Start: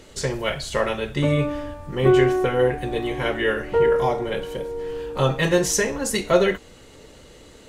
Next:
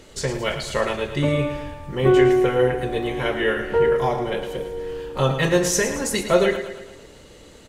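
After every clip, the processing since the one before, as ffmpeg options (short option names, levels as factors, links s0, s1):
-af "aecho=1:1:111|222|333|444|555|666:0.316|0.164|0.0855|0.0445|0.0231|0.012"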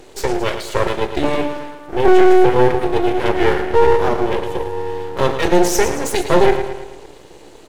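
-af "highpass=f=350:t=q:w=3.4,apsyclip=2,aeval=exprs='max(val(0),0)':c=same,volume=0.841"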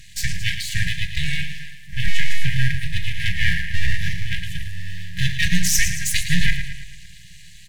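-af "afftfilt=real='re*(1-between(b*sr/4096,190,1600))':imag='im*(1-between(b*sr/4096,190,1600))':win_size=4096:overlap=0.75,volume=1.41"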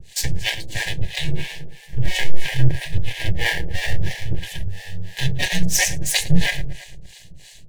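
-filter_complex "[0:a]acrossover=split=280|1600|2200[s0][s1][s2][s3];[s2]acrusher=samples=34:mix=1:aa=0.000001[s4];[s0][s1][s4][s3]amix=inputs=4:normalize=0,acrossover=split=540[s5][s6];[s5]aeval=exprs='val(0)*(1-1/2+1/2*cos(2*PI*3*n/s))':c=same[s7];[s6]aeval=exprs='val(0)*(1-1/2-1/2*cos(2*PI*3*n/s))':c=same[s8];[s7][s8]amix=inputs=2:normalize=0,volume=1.88"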